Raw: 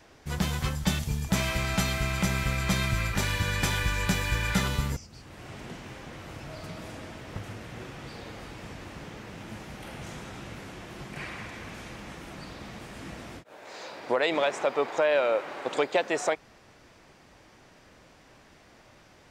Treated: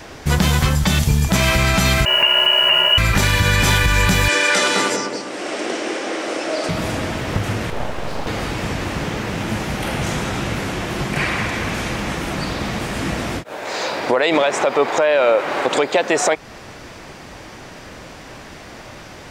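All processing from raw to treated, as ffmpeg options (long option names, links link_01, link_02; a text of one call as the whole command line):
ffmpeg -i in.wav -filter_complex "[0:a]asettb=1/sr,asplit=3[link_01][link_02][link_03];[link_01]atrim=end=2.054[link_04];[link_02]atrim=start=2.05:end=2.98,asetpts=PTS-STARTPTS,afade=type=in:duration=0.004:curve=qsin,afade=type=out:start_time=0.926:duration=0.004:curve=qsin,equalizer=frequency=710:width=0.6:gain=-6,lowpass=frequency=2600:width_type=q:width=0.5098,lowpass=frequency=2600:width_type=q:width=0.6013,lowpass=frequency=2600:width_type=q:width=0.9,lowpass=frequency=2600:width_type=q:width=2.563,afreqshift=-3000,acrusher=bits=7:mix=0:aa=0.5[link_05];[link_03]atrim=start=2.976[link_06];[link_04][link_05]acrossfade=duration=0.004:curve1=hsin:curve2=qsin[link_07];[link_07][link_06]acrossfade=duration=0.004:curve1=qsin:curve2=hsin,asettb=1/sr,asplit=3[link_08][link_09][link_10];[link_08]atrim=end=4.284[link_11];[link_09]atrim=start=4.28:end=6.69,asetpts=PTS-STARTPTS,afade=type=in:duration=0.004:curve=qsin,afade=type=out:start_time=2.406:duration=0.004:curve=qsin,highpass=frequency=310:width=0.5412,highpass=frequency=310:width=1.3066,equalizer=frequency=320:width_type=q:width=4:gain=6,equalizer=frequency=580:width_type=q:width=4:gain=5,equalizer=frequency=960:width_type=q:width=4:gain=-4,equalizer=frequency=5500:width_type=q:width=4:gain=4,equalizer=frequency=8700:width_type=q:width=4:gain=5,lowpass=frequency=9300:width=0.5412,lowpass=frequency=9300:width=1.3066,asplit=2[link_12][link_13];[link_13]adelay=206,lowpass=frequency=1200:poles=1,volume=-4.5dB,asplit=2[link_14][link_15];[link_15]adelay=206,lowpass=frequency=1200:poles=1,volume=0.44,asplit=2[link_16][link_17];[link_17]adelay=206,lowpass=frequency=1200:poles=1,volume=0.44,asplit=2[link_18][link_19];[link_19]adelay=206,lowpass=frequency=1200:poles=1,volume=0.44,asplit=2[link_20][link_21];[link_21]adelay=206,lowpass=frequency=1200:poles=1,volume=0.44[link_22];[link_12][link_14][link_16][link_18][link_20][link_22]amix=inputs=6:normalize=0,atrim=end_sample=106281[link_23];[link_10]atrim=start=6.686[link_24];[link_11][link_23]acrossfade=duration=0.004:curve1=hsin:curve2=qsin[link_25];[link_25][link_24]acrossfade=duration=0.004:curve1=qsin:curve2=hsin,asettb=1/sr,asplit=3[link_26][link_27][link_28];[link_26]atrim=end=7.704[link_29];[link_27]atrim=start=7.7:end=8.27,asetpts=PTS-STARTPTS,afade=type=in:duration=0.004:curve=qsin,afade=type=out:start_time=0.566:duration=0.004:curve=qsin,highpass=frequency=190:width=0.5412,highpass=frequency=190:width=1.3066,tiltshelf=frequency=740:gain=7.5,aeval=exprs='abs(val(0))':channel_layout=same[link_30];[link_28]atrim=start=8.266[link_31];[link_29][link_30]acrossfade=duration=0.004:curve1=hsin:curve2=qsin[link_32];[link_32][link_31]acrossfade=duration=0.004:curve1=qsin:curve2=hsin,acompressor=threshold=-35dB:ratio=1.5,alimiter=level_in=23dB:limit=-1dB:release=50:level=0:latency=1,volume=-4.5dB" out.wav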